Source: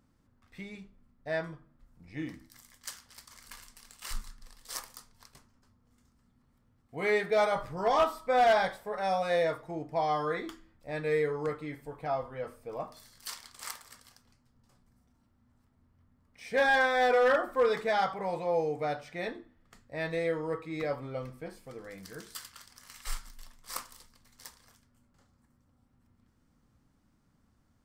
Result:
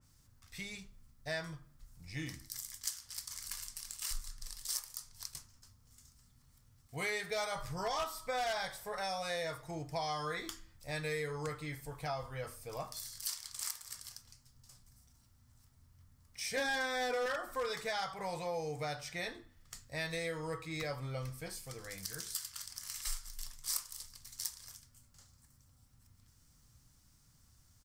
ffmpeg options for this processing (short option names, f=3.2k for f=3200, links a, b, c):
-filter_complex "[0:a]asettb=1/sr,asplit=3[a][b][c];[a]atrim=end=16.574[d];[b]atrim=start=16.57:end=17.26,asetpts=PTS-STARTPTS,afade=t=in:d=0.004:c=qsin,afade=t=out:st=0.686:d=0.004:c=qsin,equalizer=f=300:w=1.5:g=14[e];[c]atrim=start=17.256[f];[d][e]acrossfade=d=0.004:c1=hsin:c2=qsin[g];[g][f]acrossfade=d=0.004:c1=qsin:c2=hsin,firequalizer=gain_entry='entry(130,0);entry(210,-12);entry(1000,-6);entry(5500,11)':delay=0.05:min_phase=1,acompressor=threshold=-40dB:ratio=3,adynamicequalizer=threshold=0.00112:dfrequency=2700:dqfactor=0.7:tfrequency=2700:tqfactor=0.7:attack=5:release=100:ratio=0.375:range=2:mode=cutabove:tftype=highshelf,volume=4.5dB"